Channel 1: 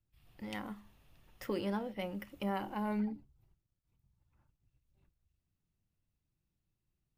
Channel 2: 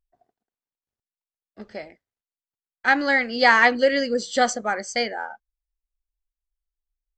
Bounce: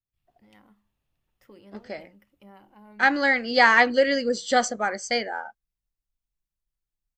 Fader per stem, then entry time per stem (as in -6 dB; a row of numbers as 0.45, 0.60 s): -14.5, -1.0 dB; 0.00, 0.15 s